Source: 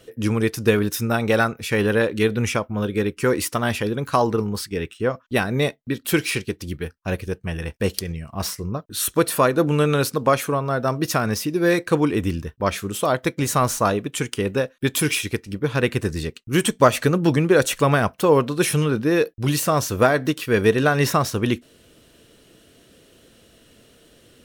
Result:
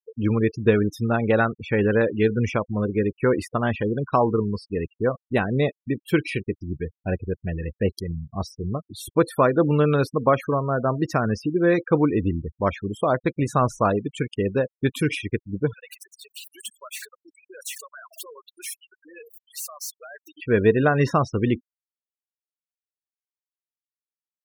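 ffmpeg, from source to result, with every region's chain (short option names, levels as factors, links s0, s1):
-filter_complex "[0:a]asettb=1/sr,asplit=3[s0][s1][s2];[s0]atrim=end=15.734[s3];[s1]atrim=start=15.73:end=20.37,asetpts=PTS-STARTPTS,afade=t=in:d=0.004:c=qsin,afade=t=out:st=4.636:d=0.004:c=qsin,aeval=exprs='val(0)+0.5*0.158*sgn(val(0))':c=same,acompressor=threshold=0.158:ratio=3:attack=3.2:release=140:knee=1:detection=peak,aderivative[s4];[s2]atrim=start=20.366[s5];[s3][s4]acrossfade=d=0.004:c1=hsin:c2=qsin[s6];[s6][s5]acrossfade=d=0.004:c1=qsin:c2=hsin,afftfilt=real='re*gte(hypot(re,im),0.0562)':imag='im*gte(hypot(re,im),0.0562)':win_size=1024:overlap=0.75,lowpass=f=1700:p=1"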